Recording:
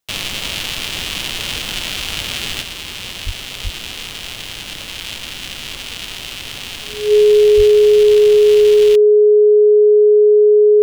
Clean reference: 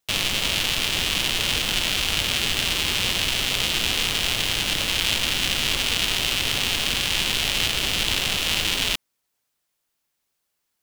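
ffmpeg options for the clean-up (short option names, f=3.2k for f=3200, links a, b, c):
-filter_complex "[0:a]bandreject=f=420:w=30,asplit=3[a][b][c];[a]afade=t=out:st=3.25:d=0.02[d];[b]highpass=f=140:w=0.5412,highpass=f=140:w=1.3066,afade=t=in:st=3.25:d=0.02,afade=t=out:st=3.37:d=0.02[e];[c]afade=t=in:st=3.37:d=0.02[f];[d][e][f]amix=inputs=3:normalize=0,asplit=3[g][h][i];[g]afade=t=out:st=3.63:d=0.02[j];[h]highpass=f=140:w=0.5412,highpass=f=140:w=1.3066,afade=t=in:st=3.63:d=0.02,afade=t=out:st=3.75:d=0.02[k];[i]afade=t=in:st=3.75:d=0.02[l];[j][k][l]amix=inputs=3:normalize=0,asplit=3[m][n][o];[m]afade=t=out:st=7.56:d=0.02[p];[n]highpass=f=140:w=0.5412,highpass=f=140:w=1.3066,afade=t=in:st=7.56:d=0.02,afade=t=out:st=7.68:d=0.02[q];[o]afade=t=in:st=7.68:d=0.02[r];[p][q][r]amix=inputs=3:normalize=0,asetnsamples=n=441:p=0,asendcmd='2.62 volume volume 5.5dB',volume=0dB"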